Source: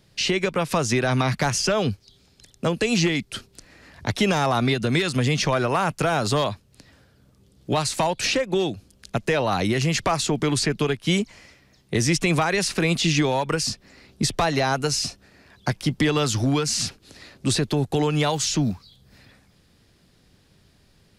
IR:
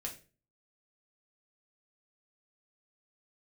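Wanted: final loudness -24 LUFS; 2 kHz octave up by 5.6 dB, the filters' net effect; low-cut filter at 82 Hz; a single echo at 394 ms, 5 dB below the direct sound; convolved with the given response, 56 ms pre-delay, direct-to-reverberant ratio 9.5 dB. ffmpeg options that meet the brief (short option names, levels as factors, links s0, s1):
-filter_complex "[0:a]highpass=82,equalizer=f=2000:t=o:g=7,aecho=1:1:394:0.562,asplit=2[s0][s1];[1:a]atrim=start_sample=2205,adelay=56[s2];[s1][s2]afir=irnorm=-1:irlink=0,volume=0.376[s3];[s0][s3]amix=inputs=2:normalize=0,volume=0.668"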